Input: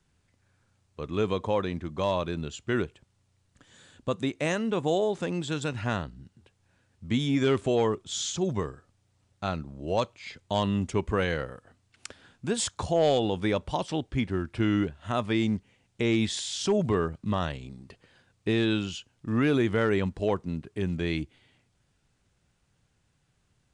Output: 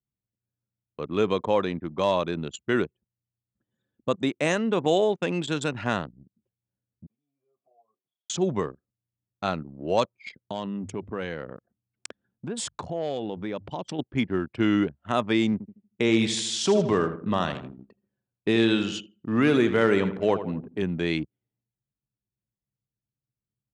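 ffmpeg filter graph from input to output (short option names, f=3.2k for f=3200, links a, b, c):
-filter_complex "[0:a]asettb=1/sr,asplit=3[a][b][c];[a]atrim=end=4.854[d];[b]atrim=start=4.85:end=5.49,asetpts=PTS-STARTPTS,afade=t=in:d=0.004:c=qsin,afade=t=out:st=0.636:d=0.004:c=qsin,agate=range=-9dB:threshold=-37dB:ratio=16:release=100:detection=peak,equalizer=f=2.6k:w=2:g=5[e];[c]atrim=start=5.486[f];[d][e]acrossfade=d=0.004:c1=hsin:c2=qsin[g];[g][f]acrossfade=d=0.004:c1=qsin:c2=hsin,asettb=1/sr,asplit=3[h][i][j];[h]atrim=end=7.064[k];[i]atrim=start=7.06:end=8.3,asetpts=PTS-STARTPTS,afade=t=in:d=0.004:c=qsin,afade=t=out:st=1.236:d=0.004:c=qsin,acompressor=threshold=-38dB:ratio=6:attack=3.2:release=140:knee=1:detection=peak,asplit=3[l][m][n];[l]bandpass=f=730:t=q:w=8,volume=0dB[o];[m]bandpass=f=1.09k:t=q:w=8,volume=-6dB[p];[n]bandpass=f=2.44k:t=q:w=8,volume=-9dB[q];[o][p][q]amix=inputs=3:normalize=0,asplit=2[r][s];[s]adelay=37,volume=-11dB[t];[r][t]amix=inputs=2:normalize=0,atrim=end_sample=54684[u];[j]atrim=start=8.296[v];[k][u]acrossfade=d=0.004:c1=hsin:c2=qsin[w];[w][v]acrossfade=d=0.004:c1=qsin:c2=hsin,asettb=1/sr,asplit=3[x][y][z];[x]atrim=end=10.414[aa];[y]atrim=start=10.41:end=13.99,asetpts=PTS-STARTPTS,afade=t=in:d=0.004:c=qsin,afade=t=out:st=3.576:d=0.004:c=qsin,lowshelf=f=330:g=4,bandreject=f=50:t=h:w=6,bandreject=f=100:t=h:w=6,acompressor=threshold=-34dB:ratio=3:attack=3.2:release=140:knee=1:detection=peak[ab];[z]atrim=start=13.986[ac];[aa][ab]acrossfade=d=0.004:c1=hsin:c2=qsin[ad];[ad][ac]acrossfade=d=0.004:c1=qsin:c2=hsin,asettb=1/sr,asplit=3[ae][af][ag];[ae]atrim=end=15.524[ah];[af]atrim=start=15.52:end=20.83,asetpts=PTS-STARTPTS,afade=t=in:d=0.004:c=qsin,afade=t=out:st=5.306:d=0.004:c=qsin,highpass=49,aecho=1:1:79|158|237|316|395|474:0.282|0.152|0.0822|0.0444|0.024|0.0129,atrim=end_sample=234171[ai];[ag]atrim=start=20.826[aj];[ah][ai]acrossfade=d=0.004:c1=hsin:c2=qsin[ak];[ak][aj]acrossfade=d=0.004:c1=qsin:c2=hsin,anlmdn=0.631,highpass=160,volume=4dB"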